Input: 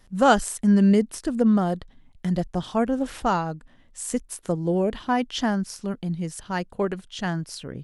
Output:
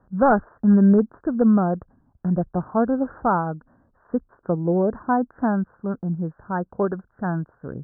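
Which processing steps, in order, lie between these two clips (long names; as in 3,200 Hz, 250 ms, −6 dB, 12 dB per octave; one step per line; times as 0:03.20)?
high-pass filter 57 Hz 12 dB per octave
wave folding −11.5 dBFS
Butterworth low-pass 1,600 Hz 96 dB per octave
level +2.5 dB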